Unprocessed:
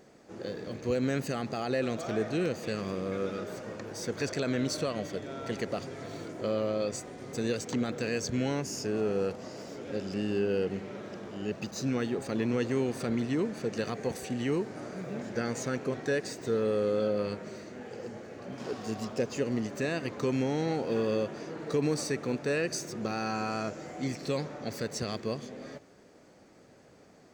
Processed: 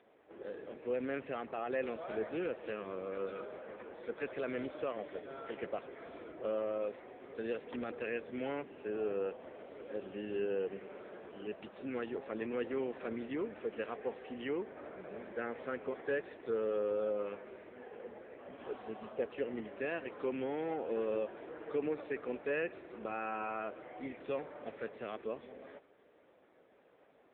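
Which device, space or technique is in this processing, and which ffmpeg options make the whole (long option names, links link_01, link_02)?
telephone: -af "highpass=370,lowpass=3300,volume=-3dB" -ar 8000 -c:a libopencore_amrnb -b:a 6700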